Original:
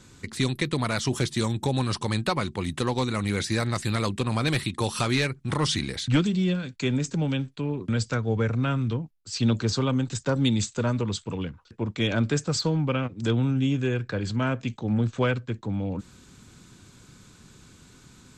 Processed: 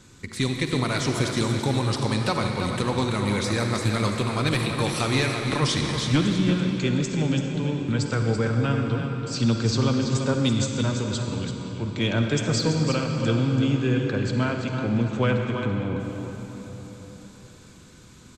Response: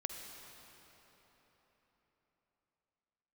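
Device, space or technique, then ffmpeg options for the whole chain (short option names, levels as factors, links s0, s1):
cave: -filter_complex "[0:a]aecho=1:1:334:0.376[s0];[1:a]atrim=start_sample=2205[s1];[s0][s1]afir=irnorm=-1:irlink=0,asettb=1/sr,asplit=3[s2][s3][s4];[s2]atrim=end=10.534[s5];[s3]atrim=start=10.53:end=11.97,asetpts=PTS-STARTPTS,afade=t=in:d=0.004:c=qsin,afade=t=out:st=1.436:d=0.004:c=qsin,equalizer=f=590:t=o:w=2.3:g=-4[s6];[s4]atrim=start=11.966[s7];[s5][s6]acrossfade=d=0.004:c1=hsin:c2=qsin[s8];[s8][s7]acrossfade=d=0.004:c1=qsin:c2=hsin,volume=1.26"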